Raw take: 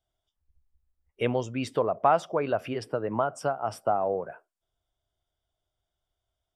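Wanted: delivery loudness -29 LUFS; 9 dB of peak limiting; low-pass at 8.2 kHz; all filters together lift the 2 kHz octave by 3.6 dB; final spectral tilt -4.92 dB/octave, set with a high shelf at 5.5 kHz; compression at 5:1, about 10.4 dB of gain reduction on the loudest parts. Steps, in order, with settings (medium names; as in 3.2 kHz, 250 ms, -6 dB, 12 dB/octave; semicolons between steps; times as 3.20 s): low-pass 8.2 kHz; peaking EQ 2 kHz +4 dB; treble shelf 5.5 kHz +8.5 dB; compression 5:1, threshold -27 dBFS; trim +6 dB; peak limiter -16.5 dBFS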